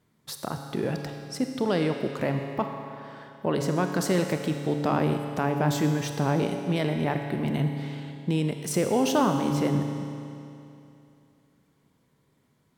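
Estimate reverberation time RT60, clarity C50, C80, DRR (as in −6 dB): 2.8 s, 5.0 dB, 6.0 dB, 4.5 dB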